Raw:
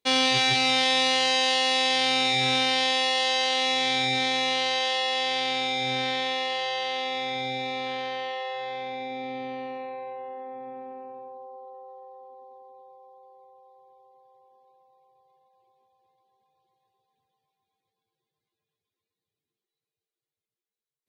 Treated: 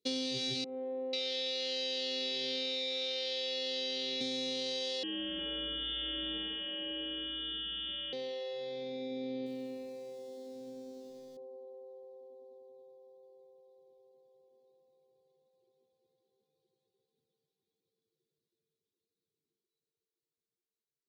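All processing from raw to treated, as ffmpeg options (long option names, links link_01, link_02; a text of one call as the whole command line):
ffmpeg -i in.wav -filter_complex "[0:a]asettb=1/sr,asplit=3[link_01][link_02][link_03];[link_01]atrim=end=0.644[link_04];[link_02]atrim=start=0.64:end=4.21,asetpts=PTS-STARTPTS,afade=type=in:duration=0.004:curve=qsin,afade=type=out:start_time=3.566:duration=0.004:curve=qsin,highpass=470,lowpass=4000,acrossover=split=1000[link_05][link_06];[link_06]adelay=490[link_07];[link_05][link_07]amix=inputs=2:normalize=0,atrim=end_sample=157437[link_08];[link_03]atrim=start=4.206[link_09];[link_04][link_08]acrossfade=duration=0.004:curve1=hsin:curve2=qsin[link_10];[link_10][link_09]acrossfade=duration=0.004:curve1=qsin:curve2=hsin,asettb=1/sr,asplit=3[link_11][link_12][link_13];[link_11]atrim=end=5.034[link_14];[link_12]atrim=start=5.03:end=8.13,asetpts=PTS-STARTPTS,afade=type=in:duration=0.004:curve=qsin,afade=type=out:start_time=3.096:duration=0.004:curve=qsin,lowpass=frequency=3100:width_type=q:width=0.5098,lowpass=frequency=3100:width_type=q:width=0.6013,lowpass=frequency=3100:width_type=q:width=0.9,lowpass=frequency=3100:width_type=q:width=2.563,afreqshift=-3700,aecho=1:1:359:0.596,atrim=end_sample=136710[link_15];[link_13]atrim=start=8.126[link_16];[link_14][link_15]acrossfade=duration=0.004:curve1=hsin:curve2=qsin[link_17];[link_17][link_16]acrossfade=duration=0.004:curve1=qsin:curve2=hsin,asettb=1/sr,asplit=3[link_18][link_19][link_20];[link_18]atrim=end=9.464[link_21];[link_19]atrim=start=9.46:end=11.37,asetpts=PTS-STARTPTS,afade=type=in:duration=0.004:curve=qsin,afade=type=out:start_time=1.906:duration=0.004:curve=qsin,equalizer=frequency=530:width_type=o:width=1.6:gain=-3.5,aeval=exprs='val(0)*gte(abs(val(0)),0.00376)':channel_layout=same[link_22];[link_20]atrim=start=11.366[link_23];[link_21][link_22]acrossfade=duration=0.004:curve1=hsin:curve2=qsin[link_24];[link_24][link_23]acrossfade=duration=0.004:curve1=qsin:curve2=hsin,firequalizer=gain_entry='entry(100,0);entry(160,8);entry(440,11);entry(840,-17);entry(4100,6);entry(9500,-1)':delay=0.05:min_phase=1,acompressor=threshold=-24dB:ratio=6,volume=-8.5dB" out.wav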